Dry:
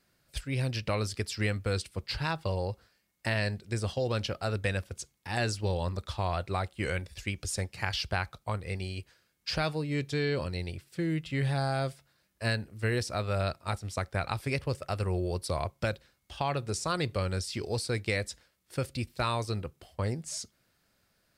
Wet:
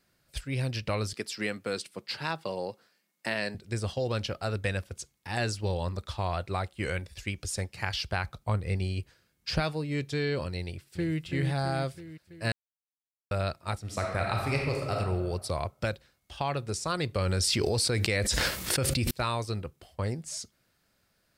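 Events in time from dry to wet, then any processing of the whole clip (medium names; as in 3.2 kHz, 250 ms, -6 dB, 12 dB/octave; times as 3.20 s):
1.13–3.55 s: high-pass 170 Hz 24 dB/octave
8.24–9.60 s: bass shelf 350 Hz +7 dB
10.62–11.18 s: echo throw 330 ms, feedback 60%, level -6 dB
12.52–13.31 s: mute
13.81–14.94 s: reverb throw, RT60 1.3 s, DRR -0.5 dB
17.15–19.11 s: level flattener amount 100%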